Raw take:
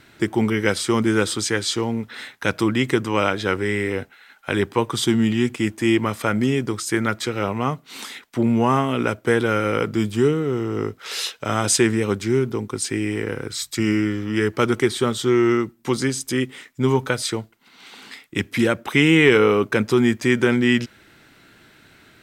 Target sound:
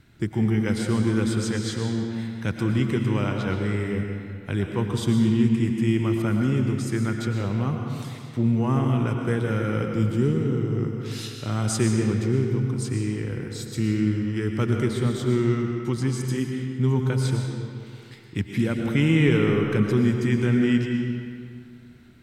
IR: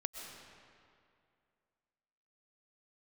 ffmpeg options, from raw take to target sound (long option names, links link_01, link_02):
-filter_complex "[0:a]bass=frequency=250:gain=15,treble=frequency=4000:gain=1[link_01];[1:a]atrim=start_sample=2205,asetrate=48510,aresample=44100[link_02];[link_01][link_02]afir=irnorm=-1:irlink=0,volume=-8.5dB"